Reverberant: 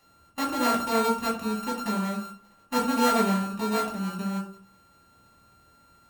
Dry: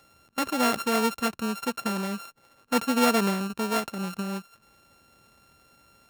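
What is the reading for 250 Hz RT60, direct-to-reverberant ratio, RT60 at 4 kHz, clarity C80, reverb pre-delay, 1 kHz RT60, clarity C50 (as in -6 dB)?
0.60 s, -5.0 dB, 0.30 s, 12.0 dB, 3 ms, 0.40 s, 8.0 dB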